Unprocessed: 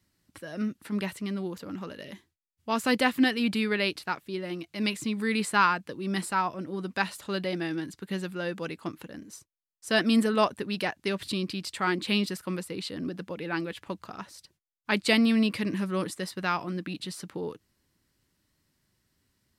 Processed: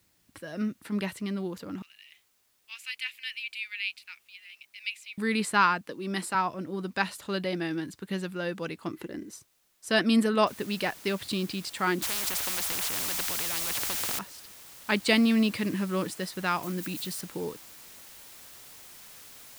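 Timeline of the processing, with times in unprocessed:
0:01.82–0:05.18: four-pole ladder high-pass 2,200 Hz, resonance 65%
0:05.81–0:06.35: high-pass filter 200 Hz
0:08.91–0:09.31: hollow resonant body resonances 360/2,000 Hz, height 14 dB
0:10.47: noise floor change −70 dB −49 dB
0:12.02–0:14.19: every bin compressed towards the loudest bin 10 to 1
0:16.63–0:17.21: spike at every zero crossing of −36 dBFS

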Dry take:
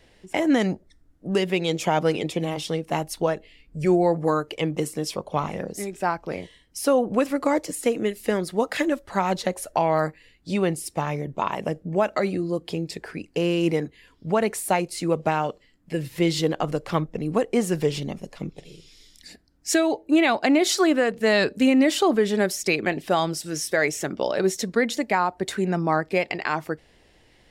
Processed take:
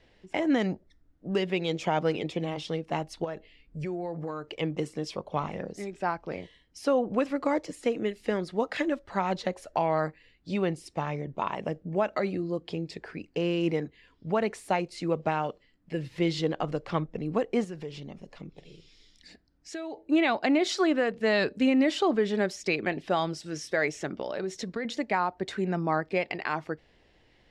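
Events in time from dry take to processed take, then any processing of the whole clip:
0:03.24–0:04.59: downward compressor, threshold −25 dBFS
0:17.64–0:19.97: downward compressor 2 to 1, threshold −37 dBFS
0:24.10–0:24.85: downward compressor 5 to 1, threshold −23 dBFS
whole clip: low-pass filter 4,900 Hz 12 dB per octave; level −5 dB

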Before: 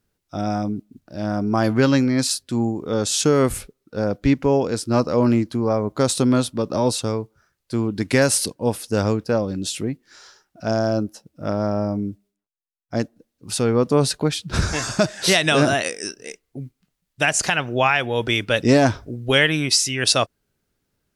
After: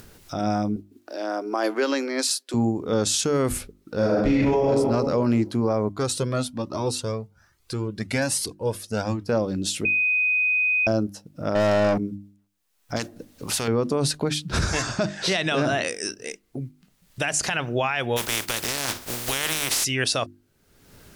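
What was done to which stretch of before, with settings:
0:00.76–0:02.54: Butterworth high-pass 310 Hz
0:03.97–0:04.67: thrown reverb, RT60 1.2 s, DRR −8.5 dB
0:05.89–0:09.28: flanger whose copies keep moving one way rising 1.2 Hz
0:09.85–0:10.87: beep over 2,500 Hz −18.5 dBFS
0:11.55–0:11.98: mid-hump overdrive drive 24 dB, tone 5,200 Hz, clips at −12.5 dBFS
0:12.96–0:13.68: every bin compressed towards the loudest bin 2 to 1
0:14.82–0:15.88: high-frequency loss of the air 78 metres
0:18.16–0:19.83: compressing power law on the bin magnitudes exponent 0.25
whole clip: mains-hum notches 50/100/150/200/250/300/350 Hz; brickwall limiter −13.5 dBFS; upward compression, threshold −28 dBFS

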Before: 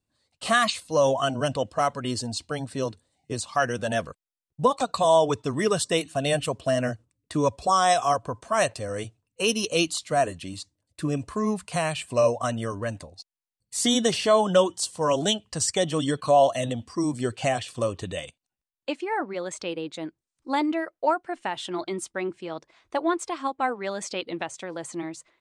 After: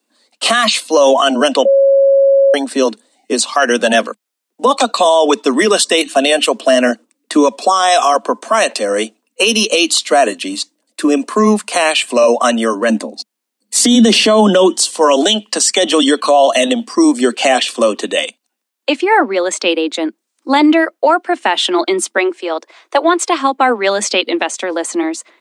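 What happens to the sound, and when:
0:01.65–0:02.54: beep over 549 Hz −22.5 dBFS
0:12.89–0:14.85: parametric band 190 Hz +11.5 dB 2 octaves
0:22.17–0:23.27: high-pass filter 350 Hz 24 dB per octave
whole clip: dynamic equaliser 3,200 Hz, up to +5 dB, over −41 dBFS, Q 0.94; Butterworth high-pass 210 Hz 96 dB per octave; boost into a limiter +17.5 dB; level −1 dB

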